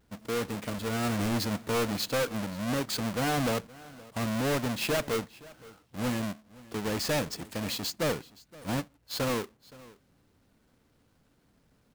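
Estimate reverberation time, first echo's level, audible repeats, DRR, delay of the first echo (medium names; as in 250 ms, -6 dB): no reverb, -21.5 dB, 1, no reverb, 520 ms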